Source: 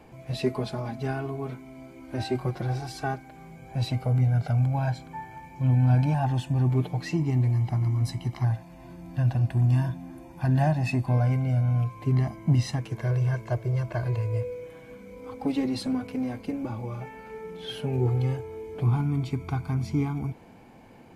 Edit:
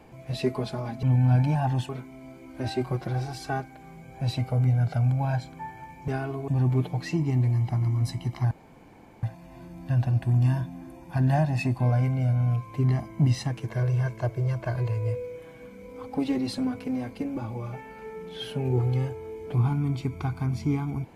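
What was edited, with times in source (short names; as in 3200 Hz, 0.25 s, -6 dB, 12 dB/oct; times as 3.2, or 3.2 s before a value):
1.03–1.43 swap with 5.62–6.48
8.51 insert room tone 0.72 s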